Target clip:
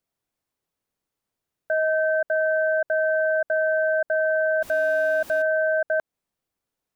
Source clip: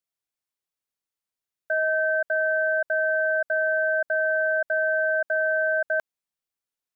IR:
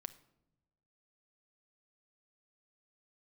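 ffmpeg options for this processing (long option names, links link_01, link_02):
-filter_complex "[0:a]asettb=1/sr,asplit=3[link_01][link_02][link_03];[link_01]atrim=end=4.624[link_04];[link_02]atrim=start=4.62:end=5.42,asetpts=PTS-STARTPTS,afade=type=in:duration=0.004:curve=qsin,afade=type=out:start_time=0.796:duration=0.004:curve=qsin,aeval=exprs='val(0)+0.5*0.0168*sgn(val(0))':channel_layout=same[link_05];[link_03]atrim=start=5.416[link_06];[link_04][link_05]acrossfade=duration=0.004:curve1=hsin:curve2=qsin[link_07];[link_07][link_06]acrossfade=duration=0.004:curve1=qsin:curve2=hsin,tiltshelf=frequency=1100:gain=6,alimiter=level_in=0.5dB:limit=-24dB:level=0:latency=1:release=158,volume=-0.5dB,volume=8.5dB"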